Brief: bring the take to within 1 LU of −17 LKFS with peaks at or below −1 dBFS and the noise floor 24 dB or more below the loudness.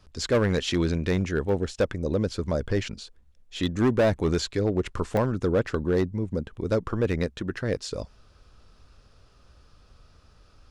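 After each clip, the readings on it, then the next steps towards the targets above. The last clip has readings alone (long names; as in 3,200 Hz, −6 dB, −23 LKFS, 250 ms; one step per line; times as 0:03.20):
share of clipped samples 1.4%; peaks flattened at −16.5 dBFS; number of dropouts 2; longest dropout 1.7 ms; integrated loudness −26.5 LKFS; sample peak −16.5 dBFS; target loudness −17.0 LKFS
→ clipped peaks rebuilt −16.5 dBFS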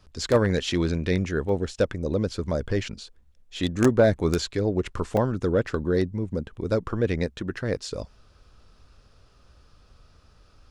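share of clipped samples 0.0%; number of dropouts 2; longest dropout 1.7 ms
→ repair the gap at 0:01.49/0:05.17, 1.7 ms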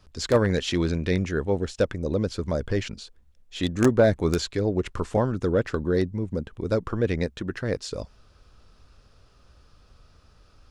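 number of dropouts 0; integrated loudness −25.5 LKFS; sample peak −7.5 dBFS; target loudness −17.0 LKFS
→ level +8.5 dB
brickwall limiter −1 dBFS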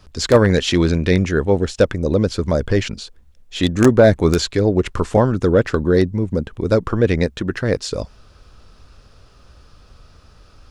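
integrated loudness −17.5 LKFS; sample peak −1.0 dBFS; background noise floor −49 dBFS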